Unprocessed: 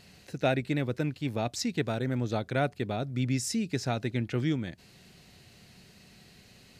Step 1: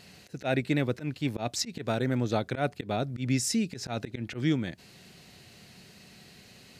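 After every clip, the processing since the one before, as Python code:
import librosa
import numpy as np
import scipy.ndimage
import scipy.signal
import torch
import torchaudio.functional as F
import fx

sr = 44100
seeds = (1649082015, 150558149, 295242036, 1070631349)

y = fx.low_shelf(x, sr, hz=64.0, db=-11.5)
y = fx.auto_swell(y, sr, attack_ms=116.0)
y = F.gain(torch.from_numpy(y), 3.5).numpy()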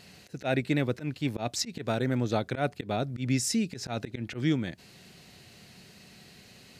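y = x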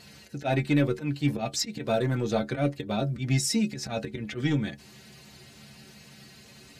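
y = fx.spec_quant(x, sr, step_db=15)
y = 10.0 ** (-16.5 / 20.0) * np.tanh(y / 10.0 ** (-16.5 / 20.0))
y = fx.stiff_resonator(y, sr, f0_hz=68.0, decay_s=0.2, stiffness=0.008)
y = F.gain(torch.from_numpy(y), 9.0).numpy()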